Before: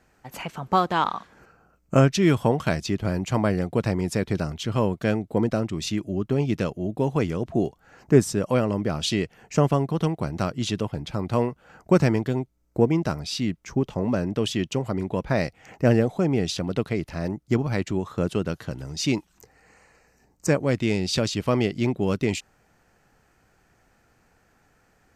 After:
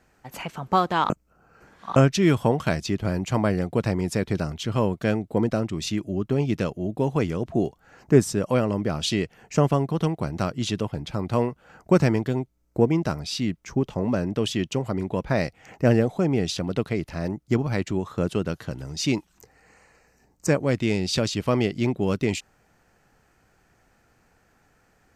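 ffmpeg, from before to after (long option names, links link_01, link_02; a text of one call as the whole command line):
ffmpeg -i in.wav -filter_complex "[0:a]asplit=3[link_01][link_02][link_03];[link_01]atrim=end=1.102[link_04];[link_02]atrim=start=1.098:end=1.962,asetpts=PTS-STARTPTS,areverse[link_05];[link_03]atrim=start=1.958[link_06];[link_04][link_05]acrossfade=duration=0.004:curve1=hsin:curve2=hsin[link_07];[link_07][link_06]acrossfade=duration=0.004:curve1=hsin:curve2=hsin" out.wav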